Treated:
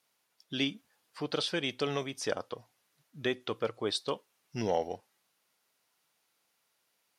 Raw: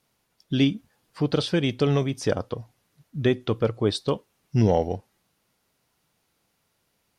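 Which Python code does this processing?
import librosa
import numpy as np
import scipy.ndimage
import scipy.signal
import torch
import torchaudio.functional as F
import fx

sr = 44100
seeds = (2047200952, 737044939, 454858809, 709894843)

y = fx.highpass(x, sr, hz=830.0, slope=6)
y = y * librosa.db_to_amplitude(-2.5)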